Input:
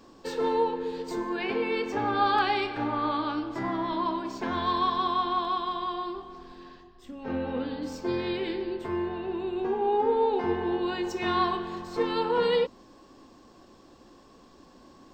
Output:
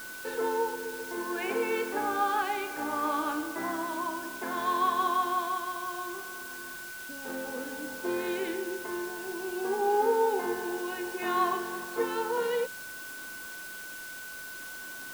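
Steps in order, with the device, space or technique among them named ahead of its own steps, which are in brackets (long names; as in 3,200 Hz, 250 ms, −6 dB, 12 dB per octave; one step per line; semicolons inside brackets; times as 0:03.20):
shortwave radio (band-pass filter 300–2,600 Hz; amplitude tremolo 0.6 Hz, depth 42%; steady tone 1,500 Hz −41 dBFS; white noise bed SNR 14 dB)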